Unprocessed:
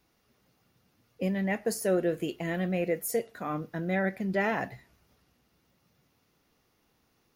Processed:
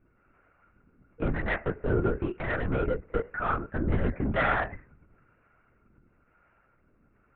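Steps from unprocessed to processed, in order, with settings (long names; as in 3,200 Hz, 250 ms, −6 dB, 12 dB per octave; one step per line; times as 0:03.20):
Butterworth low-pass 2,600 Hz 72 dB per octave
soft clipping −27.5 dBFS, distortion −11 dB
parametric band 1,400 Hz +15 dB 0.24 octaves
two-band tremolo in antiphase 1 Hz, depth 70%, crossover 480 Hz
low-shelf EQ 480 Hz +4.5 dB
linear-prediction vocoder at 8 kHz whisper
level +5.5 dB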